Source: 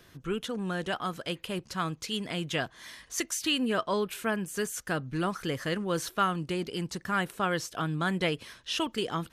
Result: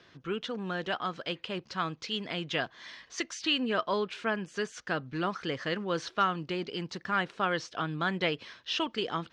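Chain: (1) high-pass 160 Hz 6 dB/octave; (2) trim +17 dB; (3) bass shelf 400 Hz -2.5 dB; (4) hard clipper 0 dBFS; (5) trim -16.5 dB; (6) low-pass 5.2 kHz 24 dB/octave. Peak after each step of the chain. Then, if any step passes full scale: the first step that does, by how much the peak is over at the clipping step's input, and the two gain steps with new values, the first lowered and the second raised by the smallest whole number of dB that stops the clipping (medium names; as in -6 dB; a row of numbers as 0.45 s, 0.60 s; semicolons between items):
-14.0 dBFS, +3.0 dBFS, +3.0 dBFS, 0.0 dBFS, -16.5 dBFS, -15.5 dBFS; step 2, 3.0 dB; step 2 +14 dB, step 5 -13.5 dB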